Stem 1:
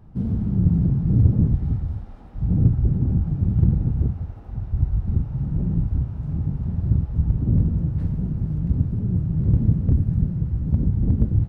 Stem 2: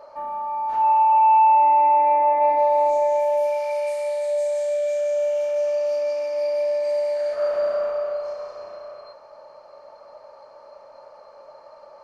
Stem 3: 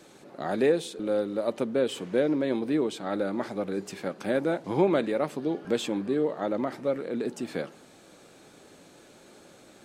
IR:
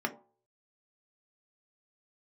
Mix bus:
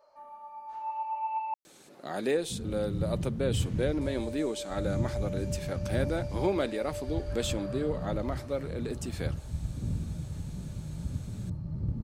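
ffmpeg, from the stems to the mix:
-filter_complex "[0:a]adelay=2350,volume=0.2[s0];[1:a]flanger=delay=9.4:depth=6.8:regen=47:speed=0.69:shape=triangular,volume=0.188,asplit=3[s1][s2][s3];[s1]atrim=end=1.54,asetpts=PTS-STARTPTS,afade=t=out:st=1.536:d=0.004:c=hsin[s4];[s2]atrim=start=1.54:end=4.01,asetpts=PTS-STARTPTS,volume=0[s5];[s3]atrim=start=4.01,asetpts=PTS-STARTPTS,afade=t=in:d=0.004:c=hsin[s6];[s4][s5][s6]concat=n=3:v=0:a=1[s7];[2:a]adelay=1650,volume=0.531[s8];[s0][s7][s8]amix=inputs=3:normalize=0,highshelf=f=3600:g=10.5"

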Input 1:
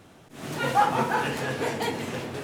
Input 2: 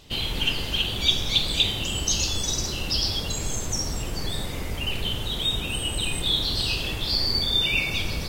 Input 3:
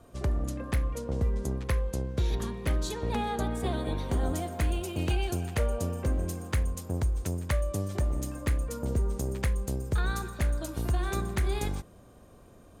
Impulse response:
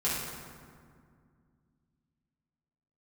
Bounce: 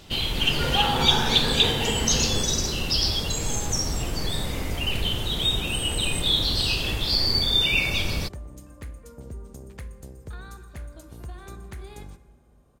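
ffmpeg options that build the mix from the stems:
-filter_complex "[0:a]acontrast=78,asoftclip=type=tanh:threshold=0.237,volume=0.211,asplit=2[s0][s1];[s1]volume=0.631[s2];[1:a]volume=1.19[s3];[2:a]adelay=350,volume=0.282,asplit=2[s4][s5];[s5]volume=0.1[s6];[3:a]atrim=start_sample=2205[s7];[s2][s6]amix=inputs=2:normalize=0[s8];[s8][s7]afir=irnorm=-1:irlink=0[s9];[s0][s3][s4][s9]amix=inputs=4:normalize=0"

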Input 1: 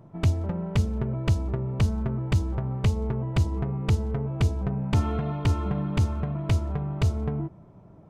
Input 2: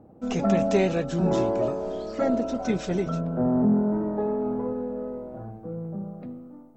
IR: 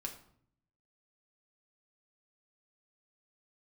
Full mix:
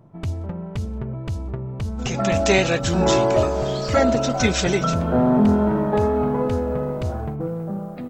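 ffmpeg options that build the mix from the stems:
-filter_complex "[0:a]alimiter=limit=0.119:level=0:latency=1:release=26,volume=0.944[s0];[1:a]dynaudnorm=f=390:g=3:m=3.55,agate=range=0.2:threshold=0.0355:ratio=16:detection=peak,tiltshelf=f=970:g=-7.5,adelay=1750,volume=1.12[s1];[s0][s1]amix=inputs=2:normalize=0"

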